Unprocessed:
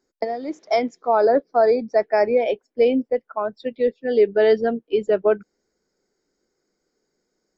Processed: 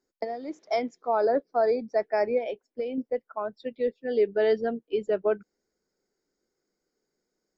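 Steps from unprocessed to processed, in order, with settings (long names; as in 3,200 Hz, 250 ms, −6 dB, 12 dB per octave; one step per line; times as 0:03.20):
0:02.38–0:02.98: downward compressor 10 to 1, threshold −21 dBFS, peak gain reduction 9.5 dB
level −7 dB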